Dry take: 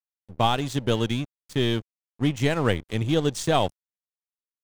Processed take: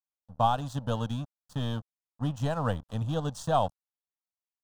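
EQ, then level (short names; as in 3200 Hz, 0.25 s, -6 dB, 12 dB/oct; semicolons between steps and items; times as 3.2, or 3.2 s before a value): low shelf 110 Hz -6 dB; high shelf 3000 Hz -11 dB; fixed phaser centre 900 Hz, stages 4; 0.0 dB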